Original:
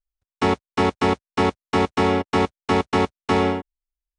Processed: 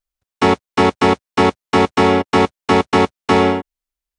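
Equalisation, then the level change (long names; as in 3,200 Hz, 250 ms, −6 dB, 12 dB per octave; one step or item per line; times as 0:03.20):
low-shelf EQ 66 Hz −10.5 dB
+6.5 dB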